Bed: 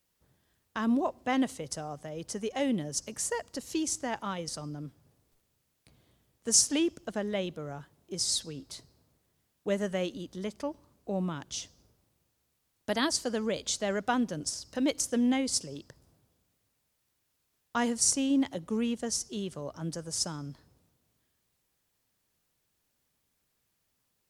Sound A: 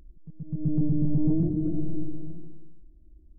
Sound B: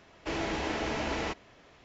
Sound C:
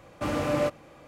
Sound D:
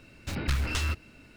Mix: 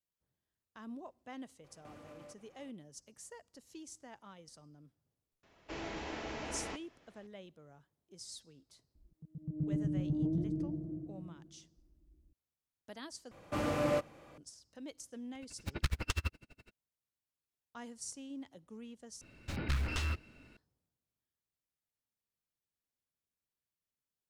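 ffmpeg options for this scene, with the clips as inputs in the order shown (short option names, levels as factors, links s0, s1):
-filter_complex "[3:a]asplit=2[s0][s1];[4:a]asplit=2[s2][s3];[0:a]volume=0.112[s4];[s0]acompressor=threshold=0.0141:ratio=6:attack=3.2:release=140:knee=1:detection=peak[s5];[1:a]highpass=44[s6];[s2]aeval=exprs='val(0)*pow(10,-40*(0.5-0.5*cos(2*PI*12*n/s))/20)':c=same[s7];[s3]highshelf=f=5300:g=-6[s8];[s4]asplit=3[s9][s10][s11];[s9]atrim=end=13.314[s12];[s1]atrim=end=1.07,asetpts=PTS-STARTPTS,volume=0.531[s13];[s10]atrim=start=14.376:end=19.214[s14];[s8]atrim=end=1.36,asetpts=PTS-STARTPTS,volume=0.531[s15];[s11]atrim=start=20.566[s16];[s5]atrim=end=1.07,asetpts=PTS-STARTPTS,volume=0.188,afade=t=in:d=0.004:c=hsin,afade=t=out:st=1.066:d=0.004:c=hsin,adelay=1640[s17];[2:a]atrim=end=1.84,asetpts=PTS-STARTPTS,volume=0.335,afade=t=in:d=0.004:c=hsin,afade=t=out:st=1.836:d=0.004:c=hsin,adelay=5430[s18];[s6]atrim=end=3.38,asetpts=PTS-STARTPTS,volume=0.355,afade=t=in:d=0.004:c=hsin,afade=t=out:st=3.376:d=0.004:c=hsin,adelay=8950[s19];[s7]atrim=end=1.36,asetpts=PTS-STARTPTS,volume=0.891,afade=t=in:d=0.004:c=hsin,afade=t=out:st=1.356:d=0.004:c=hsin,adelay=15350[s20];[s12][s13]acrossfade=d=0.004:c1=hsin:c2=hsin[s21];[s21][s14]acrossfade=d=0.004:c1=hsin:c2=hsin[s22];[s22][s15]acrossfade=d=0.004:c1=hsin:c2=hsin[s23];[s23][s16]acrossfade=d=0.004:c1=hsin:c2=hsin[s24];[s24][s17][s18][s19][s20]amix=inputs=5:normalize=0"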